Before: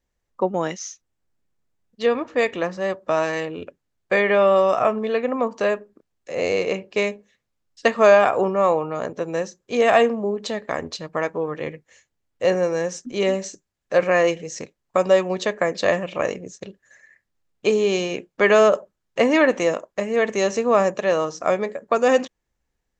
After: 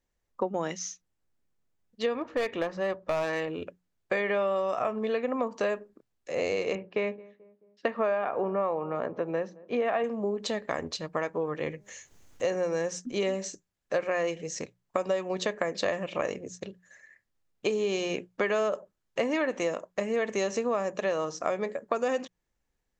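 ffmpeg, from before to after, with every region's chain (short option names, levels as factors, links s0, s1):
-filter_complex "[0:a]asettb=1/sr,asplit=3[s0][s1][s2];[s0]atrim=end=2.154[s3];[s1]atrim=start=2.15:end=3.48,asetpts=PTS-STARTPTS,afade=t=in:d=0.004:c=qsin,afade=t=out:st=1.326:d=0.004:c=qsin,asubboost=boost=8:cutoff=72,adynamicsmooth=sensitivity=1:basefreq=5800,aeval=exprs='clip(val(0),-1,0.141)':c=same[s4];[s2]atrim=start=3.476[s5];[s3][s4]acrossfade=d=0.004:c1=hsin:c2=qsin[s6];[s6][s5]acrossfade=d=0.004:c1=qsin:c2=hsin,asettb=1/sr,asplit=3[s7][s8][s9];[s7]atrim=end=6.754[s10];[s8]atrim=start=6.75:end=10.04,asetpts=PTS-STARTPTS,afade=t=in:d=0.004:c=qsin,afade=t=out:st=3.286:d=0.004:c=qsin,highpass=120,lowpass=2300,asplit=2[s11][s12];[s12]adelay=217,lowpass=f=870:p=1,volume=0.0668,asplit=2[s13][s14];[s14]adelay=217,lowpass=f=870:p=1,volume=0.55,asplit=2[s15][s16];[s16]adelay=217,lowpass=f=870:p=1,volume=0.55,asplit=2[s17][s18];[s18]adelay=217,lowpass=f=870:p=1,volume=0.55[s19];[s11][s13][s15][s17][s19]amix=inputs=5:normalize=0,atrim=end_sample=145089[s20];[s9]atrim=start=10.036[s21];[s10][s20]acrossfade=d=0.004:c1=hsin:c2=qsin[s22];[s22][s21]acrossfade=d=0.004:c1=qsin:c2=hsin,asettb=1/sr,asplit=3[s23][s24][s25];[s23]atrim=end=11.704[s26];[s24]atrim=start=11.7:end=12.56,asetpts=PTS-STARTPTS,afade=t=in:d=0.004:c=qsin,afade=t=out:st=0.856:d=0.004:c=qsin,equalizer=f=6400:w=4.9:g=8.5,bandreject=f=203:t=h:w=4,bandreject=f=406:t=h:w=4,bandreject=f=609:t=h:w=4,bandreject=f=812:t=h:w=4,bandreject=f=1015:t=h:w=4,acompressor=mode=upward:threshold=0.0251:ratio=2.5:attack=3.2:release=140:knee=2.83:detection=peak[s27];[s25]atrim=start=12.556[s28];[s26][s27]acrossfade=d=0.004:c1=hsin:c2=qsin[s29];[s29][s28]acrossfade=d=0.004:c1=qsin:c2=hsin,bandreject=f=60:t=h:w=6,bandreject=f=120:t=h:w=6,bandreject=f=180:t=h:w=6,acompressor=threshold=0.0794:ratio=6,volume=0.708"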